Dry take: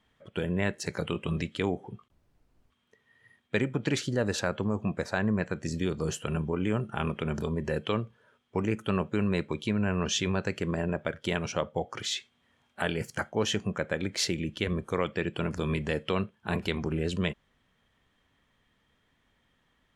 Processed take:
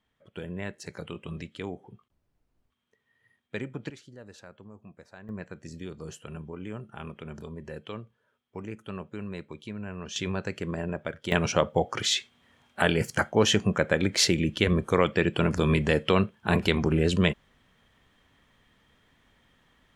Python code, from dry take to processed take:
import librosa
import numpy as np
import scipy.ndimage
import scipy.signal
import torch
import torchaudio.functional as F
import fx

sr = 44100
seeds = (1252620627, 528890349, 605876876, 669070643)

y = fx.gain(x, sr, db=fx.steps((0.0, -7.0), (3.9, -19.0), (5.29, -9.5), (10.16, -2.0), (11.32, 6.5)))